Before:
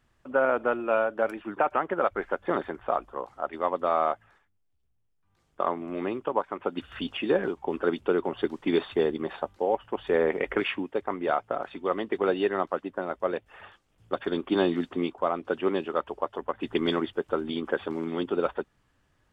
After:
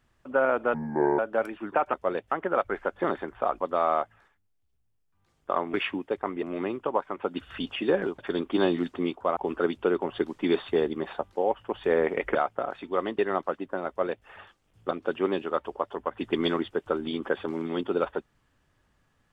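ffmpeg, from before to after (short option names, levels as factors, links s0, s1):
-filter_complex "[0:a]asplit=13[s0][s1][s2][s3][s4][s5][s6][s7][s8][s9][s10][s11][s12];[s0]atrim=end=0.744[s13];[s1]atrim=start=0.74:end=1.03,asetpts=PTS-STARTPTS,asetrate=28665,aresample=44100,atrim=end_sample=19675,asetpts=PTS-STARTPTS[s14];[s2]atrim=start=1.026:end=1.782[s15];[s3]atrim=start=13.118:end=13.502[s16];[s4]atrim=start=1.778:end=3.072[s17];[s5]atrim=start=3.708:end=5.842[s18];[s6]atrim=start=10.578:end=11.272[s19];[s7]atrim=start=5.838:end=7.602[s20];[s8]atrim=start=14.158:end=15.342[s21];[s9]atrim=start=7.598:end=10.582[s22];[s10]atrim=start=11.268:end=12.112[s23];[s11]atrim=start=12.428:end=14.162[s24];[s12]atrim=start=15.338[s25];[s13][s14]acrossfade=d=0.004:c1=hsin:c2=hsin[s26];[s26][s15]acrossfade=d=0.004:c1=hsin:c2=hsin[s27];[s27][s16]acrossfade=d=0.004:c1=hsin:c2=hsin[s28];[s28][s17]acrossfade=d=0.004:c1=hsin:c2=hsin[s29];[s29][s18]acrossfade=d=0.004:c1=hsin:c2=hsin[s30];[s30][s19]acrossfade=d=0.004:c1=hsin:c2=hsin[s31];[s31][s20]acrossfade=d=0.004:c1=hsin:c2=hsin[s32];[s32][s21]acrossfade=d=0.004:c1=hsin:c2=hsin[s33];[s33][s22]acrossfade=d=0.004:c1=hsin:c2=hsin[s34];[s34][s23]acrossfade=d=0.004:c1=hsin:c2=hsin[s35];[s35][s24]acrossfade=d=0.004:c1=hsin:c2=hsin[s36];[s36][s25]acrossfade=d=0.004:c1=hsin:c2=hsin"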